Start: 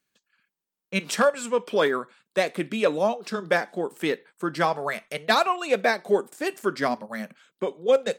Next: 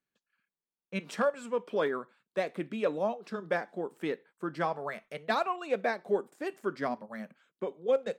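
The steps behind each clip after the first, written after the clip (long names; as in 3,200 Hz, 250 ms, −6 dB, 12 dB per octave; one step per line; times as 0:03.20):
high-shelf EQ 3,000 Hz −11.5 dB
level −7 dB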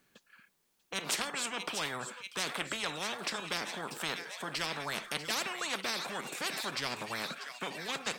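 delay with a high-pass on its return 641 ms, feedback 73%, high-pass 3,900 Hz, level −11 dB
every bin compressed towards the loudest bin 10 to 1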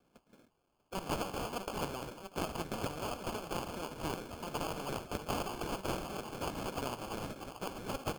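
decimation without filtering 23×
level −2 dB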